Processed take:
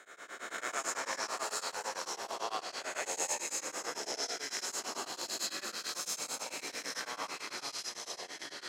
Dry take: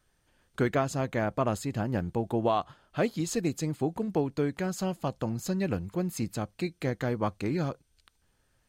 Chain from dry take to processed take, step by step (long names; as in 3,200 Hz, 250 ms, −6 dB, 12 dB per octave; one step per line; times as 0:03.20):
peak hold with a rise ahead of every peak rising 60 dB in 1.55 s
high-pass filter 1,200 Hz 12 dB per octave
parametric band 7,200 Hz +7 dB 0.59 octaves
notch filter 4,600 Hz, Q 29
in parallel at −1 dB: downward compressor, threshold −49 dBFS, peak gain reduction 22.5 dB
on the sum: delay with a high-pass on its return 253 ms, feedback 59%, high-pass 1,700 Hz, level −7 dB
delay with pitch and tempo change per echo 111 ms, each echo −4 semitones, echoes 2
on a send at −8 dB: convolution reverb RT60 0.45 s, pre-delay 63 ms
on the sum: tremolo along a rectified sine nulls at 9 Hz
level −6 dB